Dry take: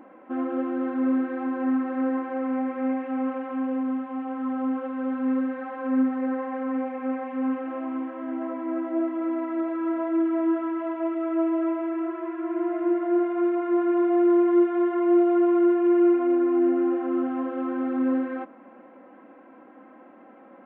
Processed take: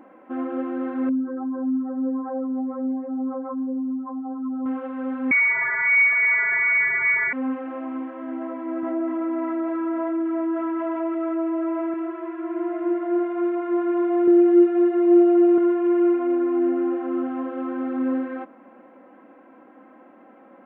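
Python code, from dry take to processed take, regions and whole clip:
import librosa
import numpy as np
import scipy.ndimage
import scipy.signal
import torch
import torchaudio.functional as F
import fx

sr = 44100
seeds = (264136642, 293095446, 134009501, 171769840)

y = fx.chain(x, sr, fx.spec_expand(power=2.2),
    fx.peak_eq(hz=1200.0, db=9.5, octaves=1.3), at=(1.09, 4.66))
y = fx.chain(y, sr, fx.low_shelf(hz=450.0, db=5.0),
    fx.freq_invert(carrier_hz=2500),
    fx.env_flatten(amount_pct=50), at=(5.31, 7.33))
y = fx.chain(y, sr, fx.lowpass(hz=1700.0, slope=6),
    fx.peak_eq(hz=450.0, db=-4.5, octaves=1.1),
    fx.env_flatten(amount_pct=70), at=(8.83, 11.94))
y = fx.chain(y, sr, fx.peak_eq(hz=2100.0, db=-7.0, octaves=0.59),
    fx.comb(ms=5.3, depth=0.95), at=(14.27, 15.58))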